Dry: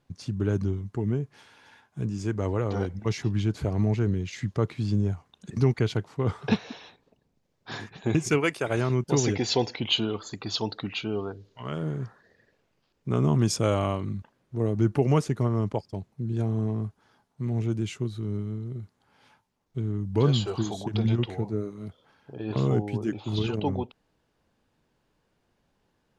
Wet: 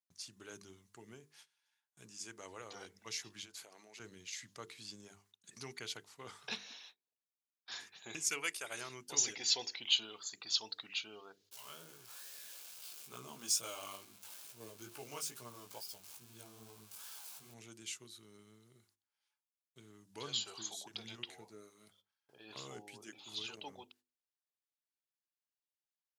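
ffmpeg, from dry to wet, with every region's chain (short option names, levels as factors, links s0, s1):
-filter_complex "[0:a]asettb=1/sr,asplit=3[s0][s1][s2];[s0]atrim=end=3.434[s3];[s1]atrim=start=3.43:end=4,asetpts=PTS-STARTPTS,afade=t=in:d=0.004:c=qsin,afade=t=out:st=0.566:d=0.004:c=qsin,highpass=330,acompressor=threshold=0.02:ratio=5:attack=3.2:release=140:knee=1:detection=peak[s4];[s2]atrim=start=3.996[s5];[s3][s4]acrossfade=d=0.004:c1=hsin:c2=qsin[s6];[s6][s5]acrossfade=d=0.004:c1=qsin:c2=hsin,asettb=1/sr,asplit=3[s7][s8][s9];[s7]atrim=end=11.514[s10];[s8]atrim=start=11.51:end=17.54,asetpts=PTS-STARTPTS,afade=t=in:d=0.004:c=qsin,afade=t=out:st=6.026:d=0.004:c=qsin,aeval=exprs='val(0)+0.5*0.0141*sgn(val(0))':c=same,bandreject=f=1900:w=5.6,flanger=delay=16:depth=5.3:speed=2.3[s11];[s9]atrim=start=17.536[s12];[s10][s11]acrossfade=d=0.004:c1=hsin:c2=qsin[s13];[s13][s12]acrossfade=d=0.004:c1=qsin:c2=hsin,agate=range=0.112:threshold=0.00316:ratio=16:detection=peak,aderivative,bandreject=f=50:t=h:w=6,bandreject=f=100:t=h:w=6,bandreject=f=150:t=h:w=6,bandreject=f=200:t=h:w=6,bandreject=f=250:t=h:w=6,bandreject=f=300:t=h:w=6,bandreject=f=350:t=h:w=6,bandreject=f=400:t=h:w=6,bandreject=f=450:t=h:w=6,volume=1.19"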